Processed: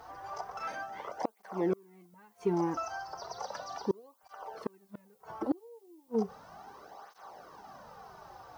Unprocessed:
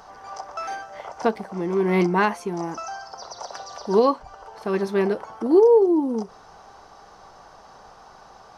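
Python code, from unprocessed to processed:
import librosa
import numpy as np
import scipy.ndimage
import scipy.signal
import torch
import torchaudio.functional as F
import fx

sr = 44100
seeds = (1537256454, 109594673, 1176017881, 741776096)

y = fx.gate_flip(x, sr, shuts_db=-16.0, range_db=-36)
y = fx.dmg_noise_colour(y, sr, seeds[0], colour='violet', level_db=-62.0)
y = fx.high_shelf(y, sr, hz=3800.0, db=-8.0)
y = fx.flanger_cancel(y, sr, hz=0.35, depth_ms=5.2)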